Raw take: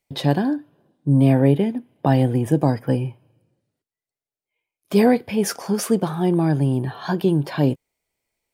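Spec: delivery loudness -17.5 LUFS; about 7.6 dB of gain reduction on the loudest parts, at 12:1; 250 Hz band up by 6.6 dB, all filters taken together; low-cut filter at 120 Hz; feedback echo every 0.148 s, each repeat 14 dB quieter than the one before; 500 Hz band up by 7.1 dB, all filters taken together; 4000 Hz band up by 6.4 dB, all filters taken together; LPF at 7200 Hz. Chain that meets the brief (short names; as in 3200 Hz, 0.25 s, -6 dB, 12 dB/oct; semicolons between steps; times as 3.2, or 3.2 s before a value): HPF 120 Hz; LPF 7200 Hz; bell 250 Hz +6.5 dB; bell 500 Hz +6.5 dB; bell 4000 Hz +8.5 dB; compressor 12:1, threshold -12 dBFS; feedback echo 0.148 s, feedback 20%, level -14 dB; gain +1.5 dB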